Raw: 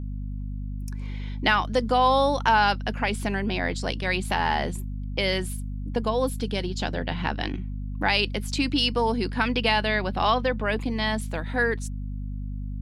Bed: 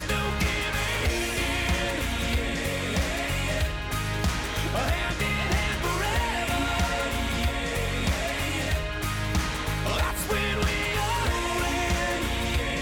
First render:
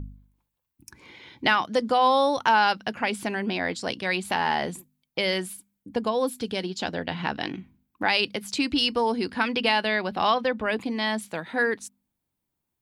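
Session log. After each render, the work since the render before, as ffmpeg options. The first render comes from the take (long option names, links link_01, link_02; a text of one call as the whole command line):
ffmpeg -i in.wav -af "bandreject=frequency=50:width_type=h:width=4,bandreject=frequency=100:width_type=h:width=4,bandreject=frequency=150:width_type=h:width=4,bandreject=frequency=200:width_type=h:width=4,bandreject=frequency=250:width_type=h:width=4" out.wav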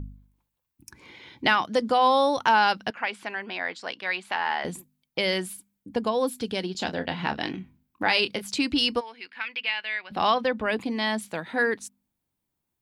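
ffmpeg -i in.wav -filter_complex "[0:a]asettb=1/sr,asplit=3[link_01][link_02][link_03];[link_01]atrim=end=2.904[link_04];[link_02]atrim=start=2.9:end=4.65,asetpts=PTS-STARTPTS,afade=type=in:duration=0.004:curve=qsin,afade=type=out:start_time=1.746:duration=0.004:curve=qsin,bandpass=frequency=1600:width_type=q:width=0.71[link_05];[link_03]atrim=start=4.646[link_06];[link_04][link_05]acrossfade=duration=0.004:curve1=hsin:curve2=qsin[link_07];[link_07][link_06]acrossfade=duration=0.004:curve1=qsin:curve2=hsin,asettb=1/sr,asplit=3[link_08][link_09][link_10];[link_08]atrim=end=6.724[link_11];[link_09]atrim=start=6.72:end=8.42,asetpts=PTS-STARTPTS,afade=type=in:duration=0.004:curve=qsin,afade=type=out:start_time=1.696:duration=0.004:curve=qsin,asplit=2[link_12][link_13];[link_13]adelay=27,volume=-9.5dB[link_14];[link_12][link_14]amix=inputs=2:normalize=0,atrim=end_sample=74970[link_15];[link_10]atrim=start=8.416[link_16];[link_11][link_15]acrossfade=duration=0.004:curve1=hsin:curve2=qsin[link_17];[link_17][link_16]acrossfade=duration=0.004:curve1=qsin:curve2=hsin,asplit=3[link_18][link_19][link_20];[link_18]afade=type=out:start_time=8.99:duration=0.02[link_21];[link_19]bandpass=frequency=2300:width_type=q:width=2.5,afade=type=in:start_time=8.99:duration=0.02,afade=type=out:start_time=10.1:duration=0.02[link_22];[link_20]afade=type=in:start_time=10.1:duration=0.02[link_23];[link_21][link_22][link_23]amix=inputs=3:normalize=0" out.wav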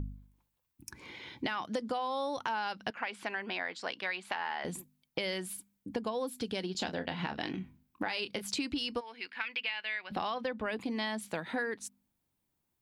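ffmpeg -i in.wav -af "alimiter=limit=-14dB:level=0:latency=1:release=135,acompressor=threshold=-32dB:ratio=6" out.wav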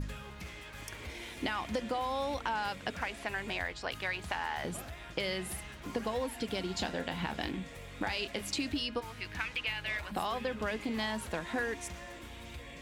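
ffmpeg -i in.wav -i bed.wav -filter_complex "[1:a]volume=-19.5dB[link_01];[0:a][link_01]amix=inputs=2:normalize=0" out.wav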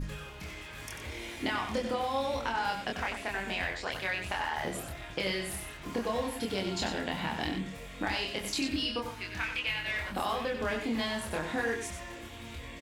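ffmpeg -i in.wav -filter_complex "[0:a]asplit=2[link_01][link_02];[link_02]adelay=26,volume=-2dB[link_03];[link_01][link_03]amix=inputs=2:normalize=0,asplit=2[link_04][link_05];[link_05]aecho=0:1:93:0.422[link_06];[link_04][link_06]amix=inputs=2:normalize=0" out.wav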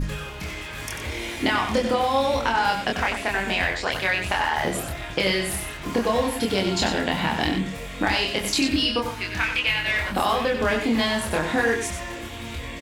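ffmpeg -i in.wav -af "volume=10dB" out.wav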